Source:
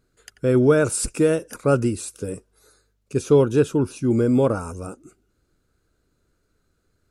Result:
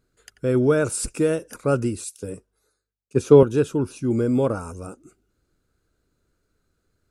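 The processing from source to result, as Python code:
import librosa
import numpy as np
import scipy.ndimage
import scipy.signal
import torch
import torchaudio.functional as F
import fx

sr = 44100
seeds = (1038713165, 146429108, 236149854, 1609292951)

y = fx.band_widen(x, sr, depth_pct=70, at=(2.04, 3.43))
y = y * 10.0 ** (-2.5 / 20.0)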